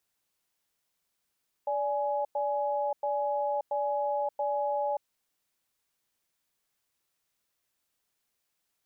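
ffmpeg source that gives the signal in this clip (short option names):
-f lavfi -i "aevalsrc='0.0335*(sin(2*PI*581*t)+sin(2*PI*837*t))*clip(min(mod(t,0.68),0.58-mod(t,0.68))/0.005,0,1)':d=3.31:s=44100"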